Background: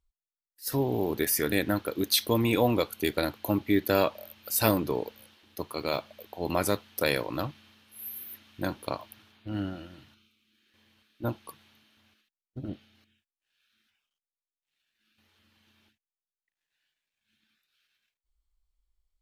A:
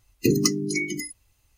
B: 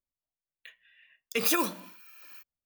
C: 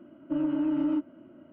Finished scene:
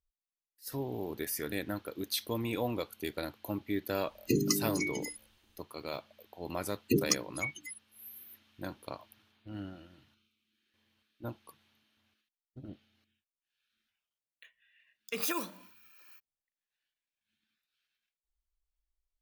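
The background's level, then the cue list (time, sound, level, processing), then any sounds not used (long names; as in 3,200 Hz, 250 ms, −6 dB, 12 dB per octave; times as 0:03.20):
background −9.5 dB
0:04.05: mix in A −8 dB
0:06.66: mix in A −4.5 dB + spectral dynamics exaggerated over time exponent 3
0:13.77: mix in B −7.5 dB
not used: C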